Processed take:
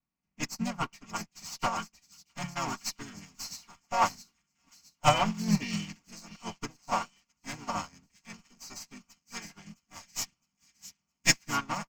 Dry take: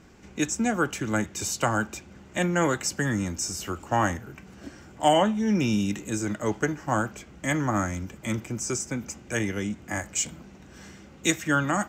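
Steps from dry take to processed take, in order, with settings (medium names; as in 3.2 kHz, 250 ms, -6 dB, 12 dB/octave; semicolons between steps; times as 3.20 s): comb filter that takes the minimum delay 4.3 ms; static phaser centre 2.6 kHz, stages 8; harmony voices -4 st -2 dB; bass shelf 95 Hz -4.5 dB; feedback echo behind a high-pass 663 ms, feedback 74%, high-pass 2.9 kHz, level -5 dB; dynamic bell 3.9 kHz, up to +4 dB, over -44 dBFS, Q 1.2; upward expansion 2.5:1, over -45 dBFS; trim +3 dB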